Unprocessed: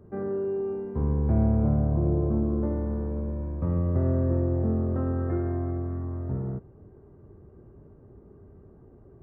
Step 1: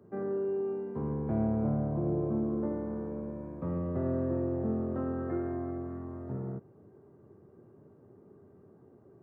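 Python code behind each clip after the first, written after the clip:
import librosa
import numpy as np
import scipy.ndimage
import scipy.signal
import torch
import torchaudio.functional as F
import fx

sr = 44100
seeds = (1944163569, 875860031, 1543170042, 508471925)

y = scipy.signal.sosfilt(scipy.signal.bessel(8, 160.0, 'highpass', norm='mag', fs=sr, output='sos'), x)
y = F.gain(torch.from_numpy(y), -2.5).numpy()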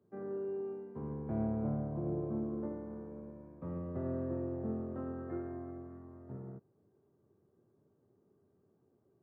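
y = fx.upward_expand(x, sr, threshold_db=-48.0, expansion=1.5)
y = F.gain(torch.from_numpy(y), -4.5).numpy()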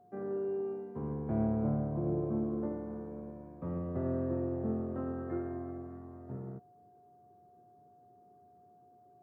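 y = x + 10.0 ** (-63.0 / 20.0) * np.sin(2.0 * np.pi * 720.0 * np.arange(len(x)) / sr)
y = F.gain(torch.from_numpy(y), 3.5).numpy()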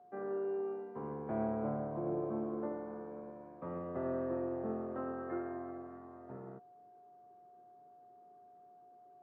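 y = fx.bandpass_q(x, sr, hz=1300.0, q=0.56)
y = F.gain(torch.from_numpy(y), 4.0).numpy()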